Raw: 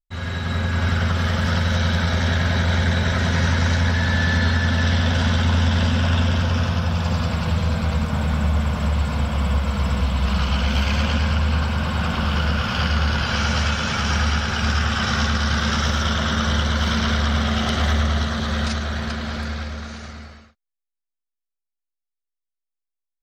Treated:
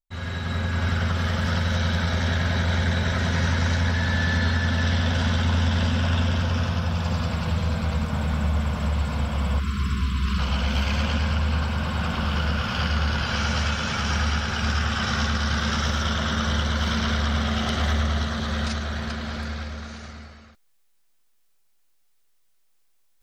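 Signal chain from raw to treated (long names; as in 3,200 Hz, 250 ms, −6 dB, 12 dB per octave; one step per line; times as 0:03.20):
time-frequency box erased 0:09.60–0:10.39, 470–990 Hz
reversed playback
upward compression, threshold −40 dBFS
reversed playback
level −3.5 dB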